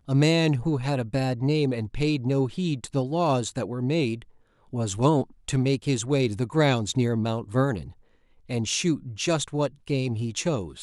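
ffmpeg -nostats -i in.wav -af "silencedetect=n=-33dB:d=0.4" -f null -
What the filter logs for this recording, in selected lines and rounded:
silence_start: 4.22
silence_end: 4.73 | silence_duration: 0.51
silence_start: 7.87
silence_end: 8.50 | silence_duration: 0.63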